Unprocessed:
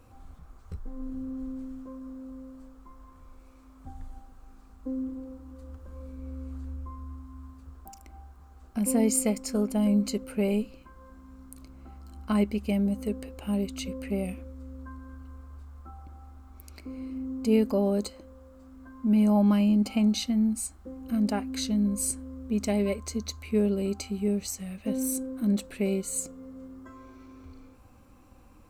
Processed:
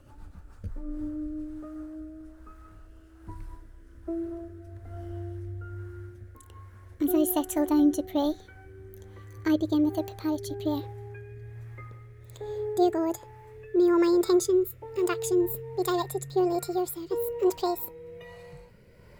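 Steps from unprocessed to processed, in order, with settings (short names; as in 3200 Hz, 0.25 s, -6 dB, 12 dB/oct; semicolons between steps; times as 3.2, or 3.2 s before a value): speed glide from 111% -> 188%; rotary speaker horn 7.5 Hz, later 1.2 Hz, at 0.24; gain +3 dB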